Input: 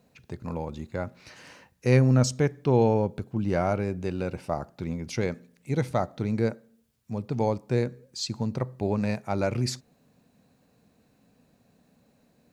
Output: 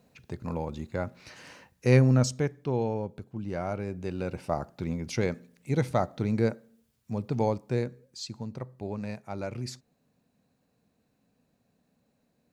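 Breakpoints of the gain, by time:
1.99 s 0 dB
2.83 s -8 dB
3.53 s -8 dB
4.53 s 0 dB
7.32 s 0 dB
8.46 s -8.5 dB

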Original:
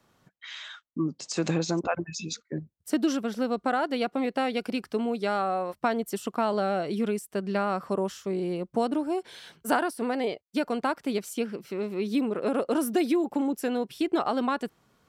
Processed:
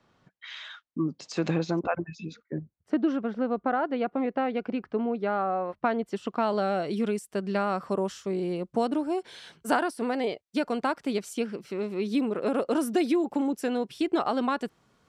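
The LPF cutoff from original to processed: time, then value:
1.17 s 4800 Hz
2.39 s 1800 Hz
5.49 s 1800 Hz
6.23 s 3800 Hz
6.75 s 9700 Hz

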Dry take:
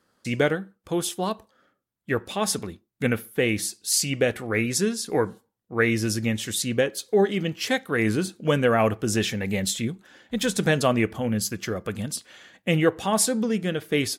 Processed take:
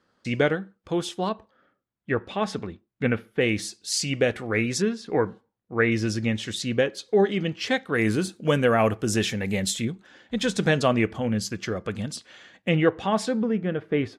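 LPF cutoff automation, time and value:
5100 Hz
from 1.29 s 3000 Hz
from 3.41 s 6300 Hz
from 4.82 s 2900 Hz
from 5.92 s 5100 Hz
from 7.94 s 11000 Hz
from 9.85 s 6200 Hz
from 12.69 s 3500 Hz
from 13.42 s 1700 Hz

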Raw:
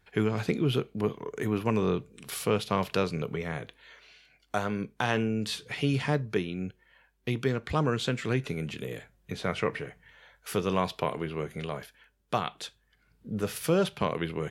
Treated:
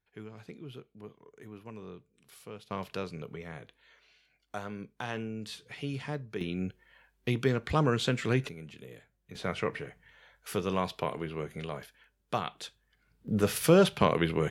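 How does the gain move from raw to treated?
-18.5 dB
from 2.71 s -9 dB
from 6.41 s +0.5 dB
from 8.49 s -11.5 dB
from 9.35 s -3 dB
from 13.28 s +4 dB

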